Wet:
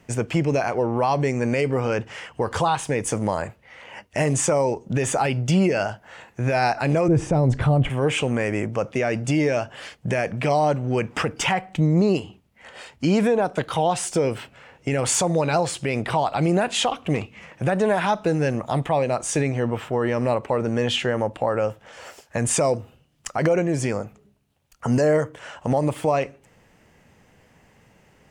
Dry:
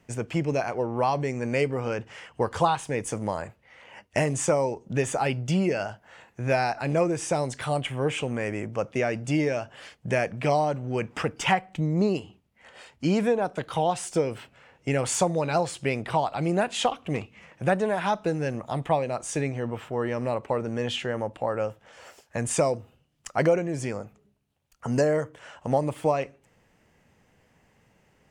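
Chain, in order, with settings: 7.08–7.9 tilt -4.5 dB/oct; limiter -18.5 dBFS, peak gain reduction 10.5 dB; gain +7 dB

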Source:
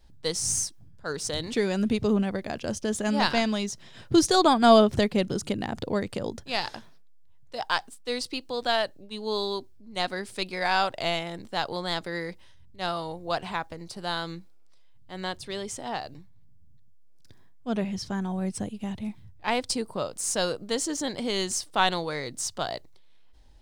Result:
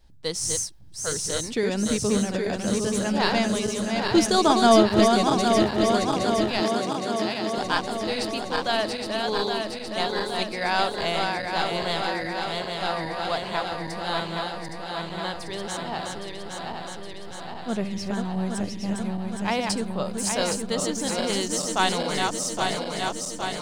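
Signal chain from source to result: regenerating reverse delay 0.408 s, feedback 82%, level -4 dB; 6.6–7.58 HPF 130 Hz 24 dB/oct

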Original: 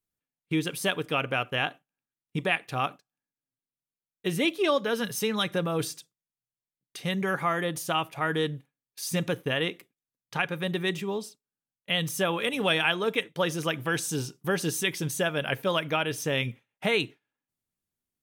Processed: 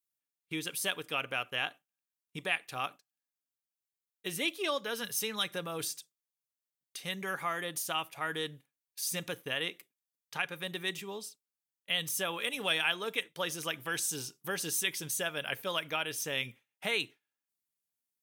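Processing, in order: tilt +2.5 dB/oct; gain -7.5 dB

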